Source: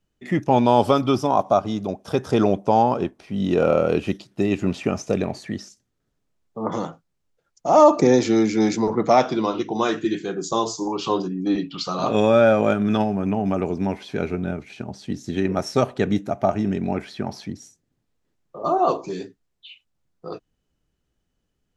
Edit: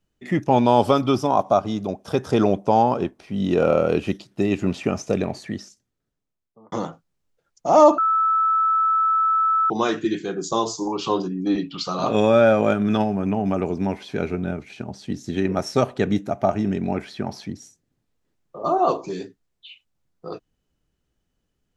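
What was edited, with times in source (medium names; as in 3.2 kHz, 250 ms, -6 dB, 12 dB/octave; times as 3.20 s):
5.45–6.72 s: fade out
7.98–9.70 s: bleep 1.31 kHz -16 dBFS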